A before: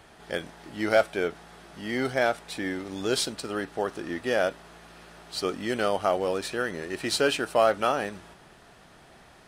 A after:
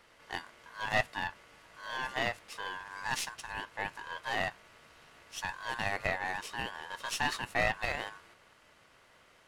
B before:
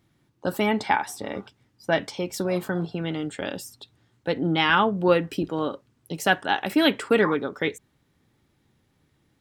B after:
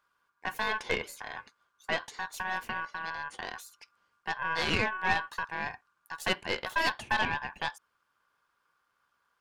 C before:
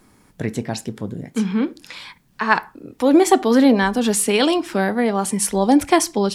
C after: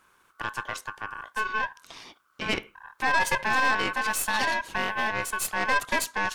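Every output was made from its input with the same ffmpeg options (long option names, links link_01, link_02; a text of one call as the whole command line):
ffmpeg -i in.wav -af "apsyclip=6dB,aeval=exprs='val(0)*sin(2*PI*1300*n/s)':channel_layout=same,aeval=exprs='(tanh(3.16*val(0)+0.7)-tanh(0.7))/3.16':channel_layout=same,volume=-8dB" out.wav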